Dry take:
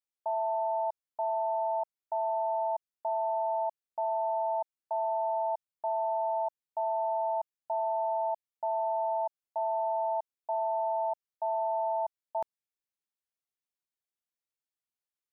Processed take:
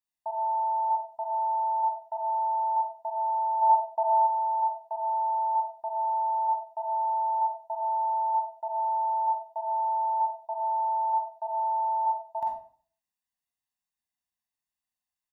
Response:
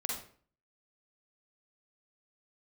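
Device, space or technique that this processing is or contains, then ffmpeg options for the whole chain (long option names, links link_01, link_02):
microphone above a desk: -filter_complex "[0:a]aecho=1:1:1.1:0.85[link_01];[1:a]atrim=start_sample=2205[link_02];[link_01][link_02]afir=irnorm=-1:irlink=0,asplit=3[link_03][link_04][link_05];[link_03]afade=type=out:start_time=3.61:duration=0.02[link_06];[link_04]equalizer=frequency=490:width=0.4:gain=8,afade=type=in:start_time=3.61:duration=0.02,afade=type=out:start_time=4.26:duration=0.02[link_07];[link_05]afade=type=in:start_time=4.26:duration=0.02[link_08];[link_06][link_07][link_08]amix=inputs=3:normalize=0,volume=-3dB"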